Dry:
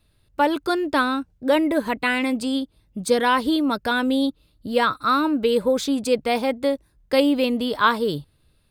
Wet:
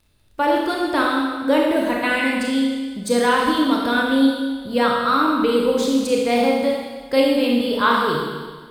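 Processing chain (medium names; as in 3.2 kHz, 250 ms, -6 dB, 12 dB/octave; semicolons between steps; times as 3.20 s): crackle 25 per s -46 dBFS; Schroeder reverb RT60 1.5 s, combs from 26 ms, DRR -2 dB; trim -1.5 dB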